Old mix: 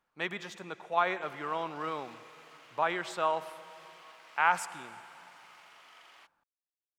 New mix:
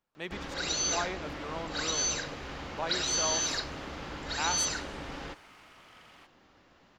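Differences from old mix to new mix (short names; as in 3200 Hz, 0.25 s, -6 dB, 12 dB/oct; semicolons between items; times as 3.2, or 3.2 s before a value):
speech: add bell 1400 Hz -9 dB 2.2 oct; first sound: unmuted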